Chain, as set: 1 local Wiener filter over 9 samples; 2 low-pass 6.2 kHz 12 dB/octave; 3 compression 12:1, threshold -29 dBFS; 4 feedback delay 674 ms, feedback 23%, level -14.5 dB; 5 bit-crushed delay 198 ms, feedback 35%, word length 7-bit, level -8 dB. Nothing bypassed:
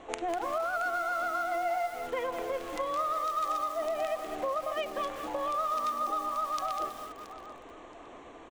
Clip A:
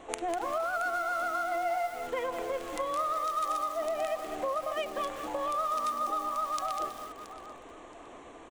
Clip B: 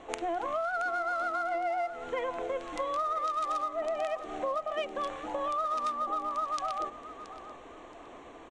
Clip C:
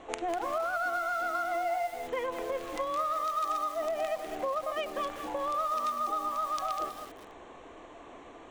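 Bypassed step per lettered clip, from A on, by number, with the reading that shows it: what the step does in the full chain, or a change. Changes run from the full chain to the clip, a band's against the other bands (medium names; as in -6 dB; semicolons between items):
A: 2, 8 kHz band +3.0 dB; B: 5, 8 kHz band -3.5 dB; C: 4, momentary loudness spread change +3 LU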